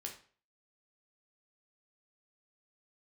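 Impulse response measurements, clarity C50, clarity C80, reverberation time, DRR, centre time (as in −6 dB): 9.0 dB, 13.5 dB, 0.45 s, 1.5 dB, 17 ms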